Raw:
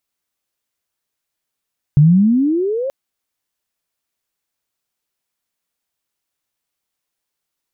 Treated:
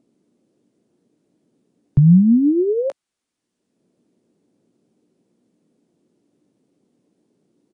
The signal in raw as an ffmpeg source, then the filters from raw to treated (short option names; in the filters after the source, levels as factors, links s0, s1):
-f lavfi -i "aevalsrc='pow(10,(-5-13.5*t/0.93)/20)*sin(2*PI*140*0.93/log(560/140)*(exp(log(560/140)*t/0.93)-1))':d=0.93:s=44100"
-filter_complex "[0:a]acrossover=split=190|330[s0][s1][s2];[s1]acompressor=mode=upward:threshold=0.0158:ratio=2.5[s3];[s0][s3][s2]amix=inputs=3:normalize=0,asplit=2[s4][s5];[s5]adelay=17,volume=0.251[s6];[s4][s6]amix=inputs=2:normalize=0,aresample=22050,aresample=44100"